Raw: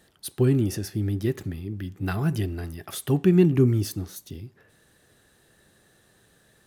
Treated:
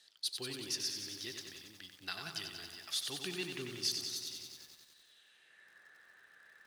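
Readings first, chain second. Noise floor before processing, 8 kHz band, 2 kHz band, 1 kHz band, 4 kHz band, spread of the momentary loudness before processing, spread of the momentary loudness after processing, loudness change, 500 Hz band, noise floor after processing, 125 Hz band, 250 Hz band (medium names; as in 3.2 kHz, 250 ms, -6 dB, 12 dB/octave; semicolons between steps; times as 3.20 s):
-62 dBFS, -1.5 dB, -5.5 dB, -12.5 dB, +5.0 dB, 18 LU, 14 LU, -14.5 dB, -21.5 dB, -66 dBFS, -31.0 dB, -25.5 dB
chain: band-pass sweep 4.5 kHz -> 1.7 kHz, 4.91–5.79 s; bit-crushed delay 93 ms, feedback 80%, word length 11-bit, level -6 dB; trim +6 dB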